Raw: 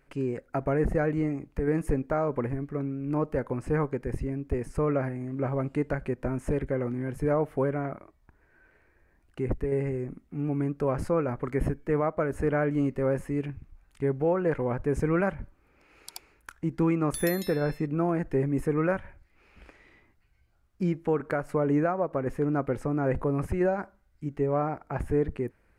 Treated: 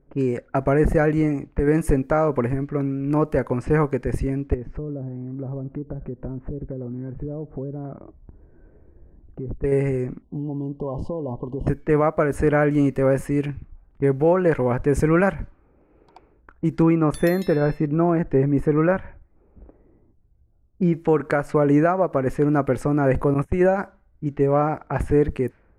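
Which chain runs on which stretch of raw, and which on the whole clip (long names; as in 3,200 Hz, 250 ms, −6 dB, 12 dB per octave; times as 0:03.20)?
0:04.54–0:09.64: treble cut that deepens with the level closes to 480 Hz, closed at −23.5 dBFS + low-shelf EQ 500 Hz +9.5 dB + downward compressor 2.5 to 1, threshold −43 dBFS
0:10.22–0:11.67: downward compressor 10 to 1, threshold −31 dBFS + linear-phase brick-wall band-stop 1,100–2,800 Hz
0:16.82–0:20.93: low-pass filter 1,600 Hz 6 dB per octave + one half of a high-frequency compander decoder only
0:23.34–0:23.76: noise gate −30 dBFS, range −23 dB + Butterworth band-reject 4,700 Hz, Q 3.3
whole clip: low-pass that shuts in the quiet parts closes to 460 Hz, open at −26 dBFS; high-shelf EQ 4,500 Hz +5 dB; level +7.5 dB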